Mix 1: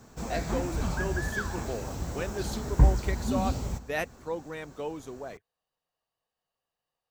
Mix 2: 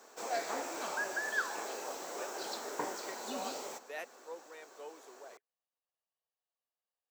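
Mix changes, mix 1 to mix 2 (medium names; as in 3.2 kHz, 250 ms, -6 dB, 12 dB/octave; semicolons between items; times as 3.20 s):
speech -11.5 dB; master: add high-pass 400 Hz 24 dB/octave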